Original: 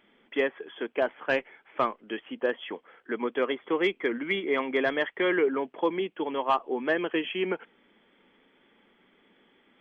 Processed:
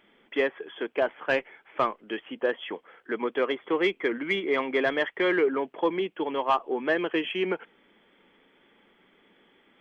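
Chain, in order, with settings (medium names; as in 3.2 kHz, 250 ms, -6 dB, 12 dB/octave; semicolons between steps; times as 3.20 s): peaking EQ 240 Hz -3.5 dB 0.31 oct; in parallel at -12 dB: saturation -25 dBFS, distortion -10 dB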